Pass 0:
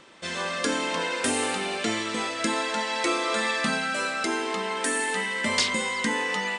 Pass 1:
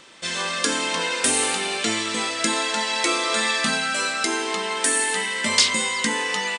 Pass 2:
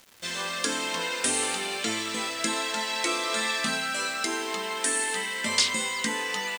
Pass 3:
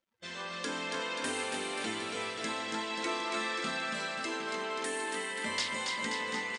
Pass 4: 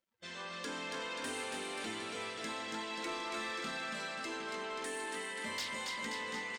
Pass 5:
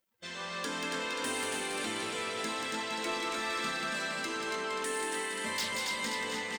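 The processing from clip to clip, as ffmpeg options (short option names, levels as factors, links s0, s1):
-filter_complex "[0:a]highshelf=f=2400:g=9.5,asplit=2[s0][s1];[s1]adelay=18,volume=0.224[s2];[s0][s2]amix=inputs=2:normalize=0"
-af "acrusher=bits=6:mix=0:aa=0.000001,volume=0.531"
-filter_complex "[0:a]lowpass=f=2900:p=1,afftdn=nr=23:nf=-51,asplit=2[s0][s1];[s1]aecho=0:1:280|532|758.8|962.9|1147:0.631|0.398|0.251|0.158|0.1[s2];[s0][s2]amix=inputs=2:normalize=0,volume=0.473"
-af "asoftclip=type=tanh:threshold=0.0355,volume=0.668"
-filter_complex "[0:a]highshelf=f=12000:g=11,asplit=2[s0][s1];[s1]aecho=0:1:184:0.562[s2];[s0][s2]amix=inputs=2:normalize=0,volume=1.58"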